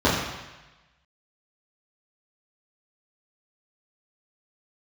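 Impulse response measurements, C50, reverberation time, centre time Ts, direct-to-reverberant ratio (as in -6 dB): 2.0 dB, 1.1 s, 64 ms, -9.5 dB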